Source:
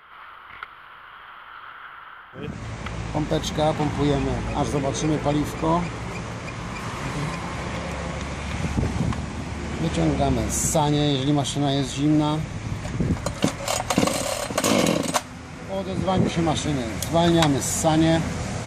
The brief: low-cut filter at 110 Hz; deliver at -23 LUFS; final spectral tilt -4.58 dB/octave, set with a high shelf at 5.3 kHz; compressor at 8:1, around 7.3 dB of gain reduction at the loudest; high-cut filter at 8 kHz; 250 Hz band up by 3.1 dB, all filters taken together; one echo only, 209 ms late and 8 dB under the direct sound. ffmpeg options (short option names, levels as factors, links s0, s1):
-af "highpass=110,lowpass=8000,equalizer=f=250:t=o:g=4.5,highshelf=f=5300:g=5,acompressor=threshold=0.1:ratio=8,aecho=1:1:209:0.398,volume=1.41"